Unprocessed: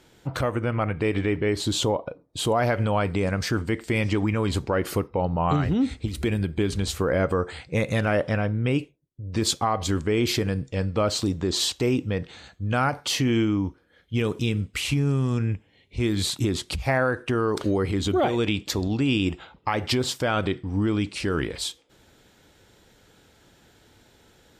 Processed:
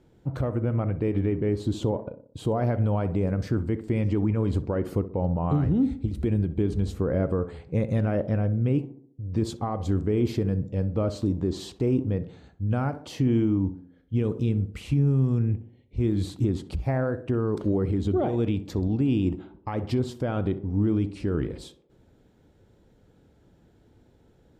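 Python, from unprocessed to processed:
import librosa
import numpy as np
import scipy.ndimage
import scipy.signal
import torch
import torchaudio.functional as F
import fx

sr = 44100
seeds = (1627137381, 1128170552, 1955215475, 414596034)

y = fx.tilt_shelf(x, sr, db=9.5, hz=860.0)
y = fx.echo_tape(y, sr, ms=64, feedback_pct=59, wet_db=-10, lp_hz=1000.0, drive_db=7.0, wow_cents=35)
y = F.gain(torch.from_numpy(y), -8.0).numpy()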